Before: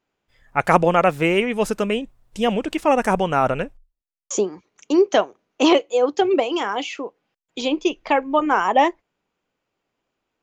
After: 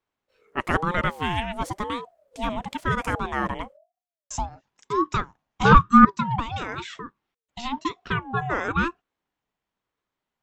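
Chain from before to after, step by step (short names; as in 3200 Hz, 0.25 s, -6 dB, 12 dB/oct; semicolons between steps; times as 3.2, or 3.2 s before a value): 5.65–6.05 band shelf 680 Hz +15 dB; in parallel at -4 dB: soft clip -0.5 dBFS, distortion -13 dB; on the sum: ring modulator with a swept carrier 580 Hz, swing 25%, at 1 Hz; gain -9 dB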